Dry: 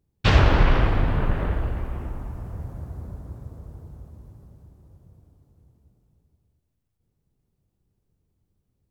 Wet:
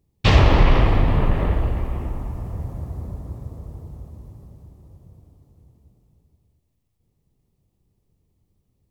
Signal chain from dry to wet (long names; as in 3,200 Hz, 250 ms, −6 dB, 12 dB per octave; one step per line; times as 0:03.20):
parametric band 1,500 Hz −11.5 dB 0.21 octaves
in parallel at −3 dB: brickwall limiter −12.5 dBFS, peak gain reduction 9 dB